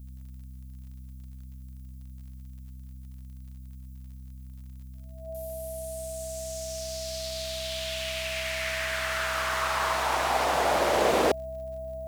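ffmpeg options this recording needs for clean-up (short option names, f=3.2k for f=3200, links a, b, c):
-af "adeclick=t=4,bandreject=f=64.6:t=h:w=4,bandreject=f=129.2:t=h:w=4,bandreject=f=193.8:t=h:w=4,bandreject=f=258.4:t=h:w=4,bandreject=f=650:w=30,agate=range=-21dB:threshold=-36dB"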